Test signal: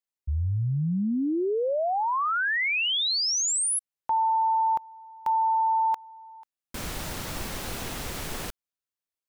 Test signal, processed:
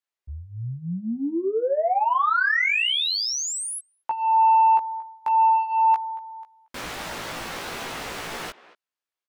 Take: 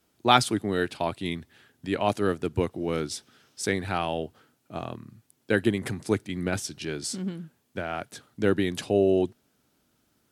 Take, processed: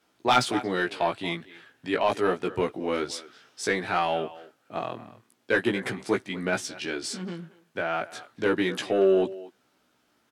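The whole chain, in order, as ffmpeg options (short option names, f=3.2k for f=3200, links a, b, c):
-filter_complex "[0:a]asplit=2[a][b];[b]adelay=230,highpass=300,lowpass=3.4k,asoftclip=type=hard:threshold=-12dB,volume=-18dB[c];[a][c]amix=inputs=2:normalize=0,asplit=2[d][e];[e]highpass=f=720:p=1,volume=19dB,asoftclip=type=tanh:threshold=-2.5dB[f];[d][f]amix=inputs=2:normalize=0,lowpass=f=2.5k:p=1,volume=-6dB,flanger=delay=15.5:depth=2.5:speed=0.32,volume=-3dB"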